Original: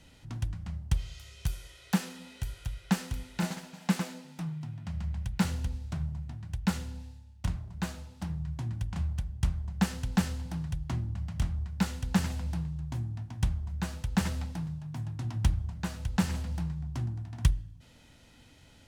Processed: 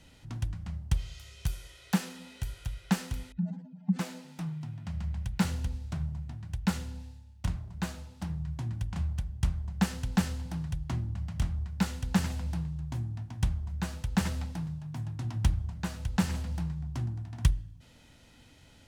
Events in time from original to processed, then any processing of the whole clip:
3.32–3.99 spectral contrast raised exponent 2.6

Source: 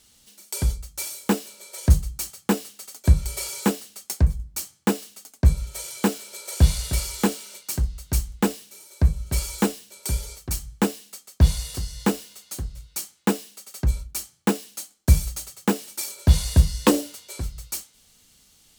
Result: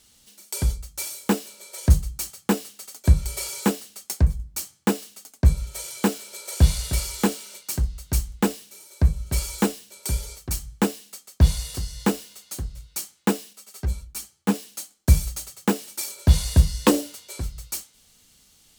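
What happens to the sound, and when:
13.53–14.54 ensemble effect

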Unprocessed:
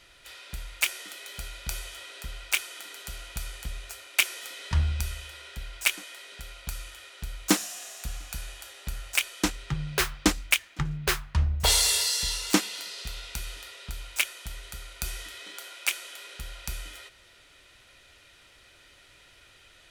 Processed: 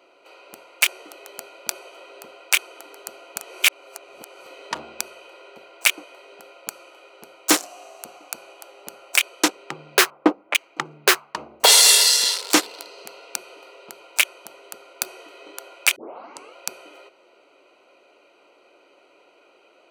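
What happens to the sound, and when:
3.41–4.46 reverse
10.1–10.55 LPF 1100 Hz
15.96 tape start 0.60 s
whole clip: Wiener smoothing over 25 samples; HPF 330 Hz 24 dB/oct; maximiser +13 dB; gain -1 dB

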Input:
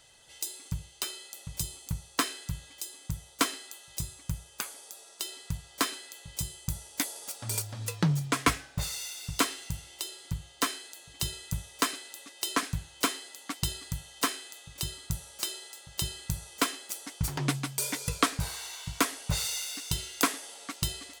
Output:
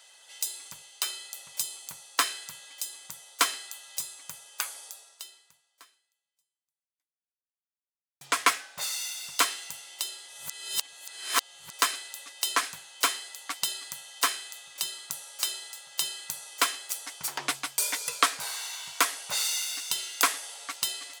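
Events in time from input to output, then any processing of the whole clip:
4.86–8.21 fade out exponential
10.28–11.73 reverse
whole clip: HPF 710 Hz 12 dB/oct; gain +4 dB

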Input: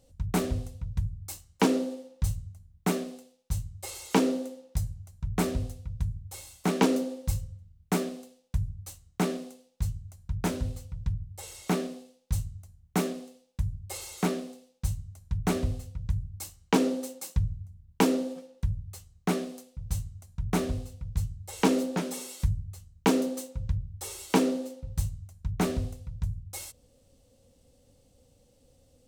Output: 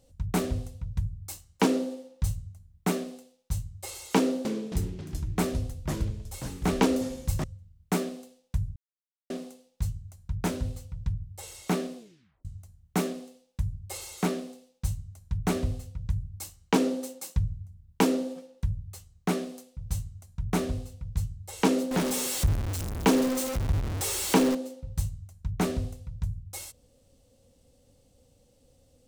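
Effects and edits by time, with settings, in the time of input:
4.18–7.44 echoes that change speed 0.269 s, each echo -3 st, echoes 3, each echo -6 dB
8.76–9.3 mute
11.97 tape stop 0.48 s
21.91–24.55 zero-crossing step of -27 dBFS

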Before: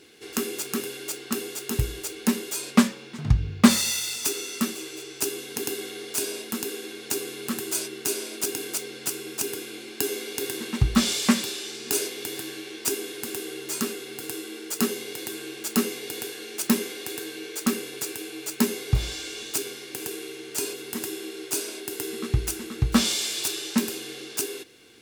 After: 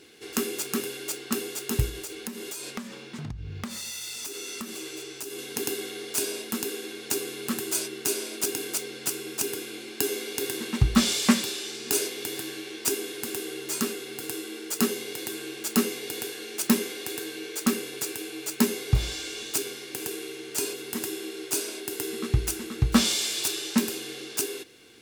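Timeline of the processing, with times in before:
1.89–5.39 compressor 10:1, threshold -32 dBFS

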